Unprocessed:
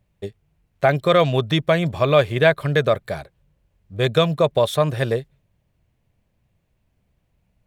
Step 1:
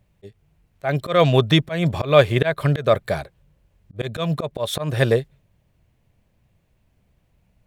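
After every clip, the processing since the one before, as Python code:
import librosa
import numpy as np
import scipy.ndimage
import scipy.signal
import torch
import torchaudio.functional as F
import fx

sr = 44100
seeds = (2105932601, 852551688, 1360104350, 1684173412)

y = fx.auto_swell(x, sr, attack_ms=189.0)
y = F.gain(torch.from_numpy(y), 4.0).numpy()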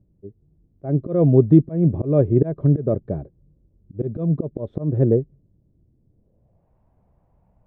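y = fx.filter_sweep_lowpass(x, sr, from_hz=320.0, to_hz=890.0, start_s=6.08, end_s=6.71, q=2.1)
y = F.gain(torch.from_numpy(y), 1.0).numpy()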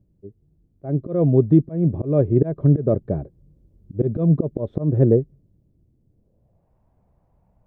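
y = fx.rider(x, sr, range_db=10, speed_s=2.0)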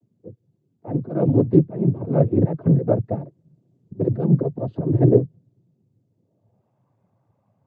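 y = fx.noise_vocoder(x, sr, seeds[0], bands=16)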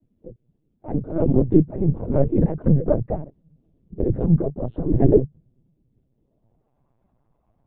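y = fx.lpc_vocoder(x, sr, seeds[1], excitation='pitch_kept', order=16)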